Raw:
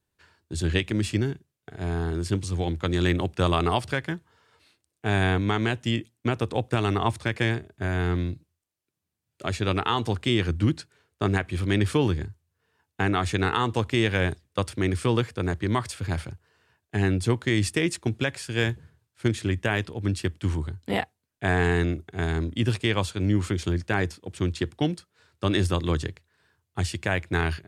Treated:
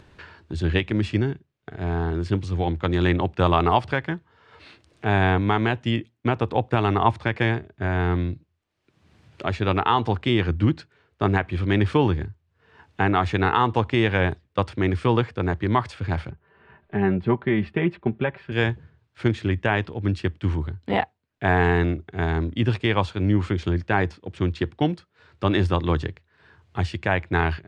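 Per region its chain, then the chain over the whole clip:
16.30–18.52 s: distance through air 480 m + comb 5.1 ms, depth 63%
whole clip: low-pass 3.2 kHz 12 dB/octave; dynamic bell 870 Hz, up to +6 dB, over -41 dBFS, Q 2.1; upward compressor, threshold -34 dBFS; trim +2.5 dB

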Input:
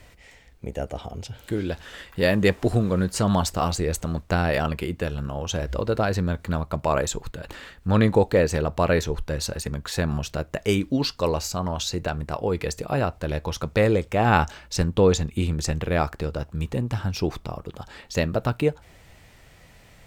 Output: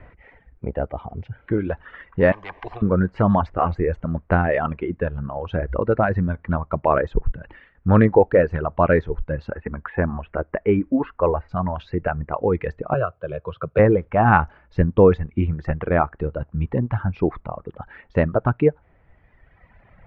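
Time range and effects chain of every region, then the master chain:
2.32–2.82 s: low-pass 5.5 kHz + static phaser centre 560 Hz, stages 4 + spectrum-flattening compressor 4:1
7.14–7.75 s: bass shelf 89 Hz +11.5 dB + three bands expanded up and down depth 100%
9.51–11.49 s: low-pass 2.5 kHz 24 dB/octave + peaking EQ 130 Hz -10 dB 0.51 oct + tape noise reduction on one side only encoder only
12.94–13.79 s: high-pass 98 Hz 24 dB/octave + static phaser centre 1.3 kHz, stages 8
whole clip: reverb removal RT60 2 s; low-pass 1.9 kHz 24 dB/octave; trim +5.5 dB

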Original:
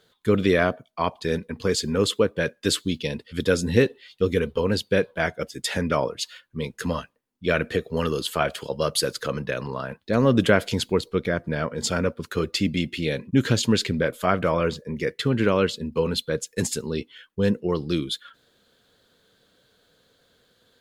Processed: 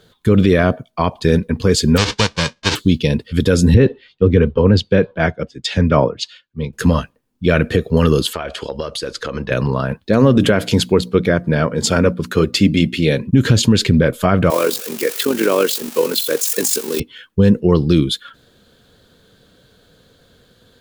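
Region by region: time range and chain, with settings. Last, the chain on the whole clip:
1.96–2.75 s: formants flattened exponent 0.1 + low-pass 5.4 kHz 24 dB/octave
3.74–6.73 s: distance through air 130 m + three bands expanded up and down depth 100%
8.33–9.51 s: low-pass 6.6 kHz + peaking EQ 140 Hz -12 dB 1.3 oct + compression 16:1, threshold -29 dBFS
10.06–13.20 s: high-pass 160 Hz 6 dB/octave + hum notches 60/120/180/240/300 Hz
14.50–17.00 s: zero-crossing glitches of -20 dBFS + high-pass 300 Hz 24 dB/octave + AM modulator 47 Hz, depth 40%
whole clip: bass shelf 260 Hz +10.5 dB; band-stop 2 kHz, Q 26; loudness maximiser +9 dB; trim -1 dB

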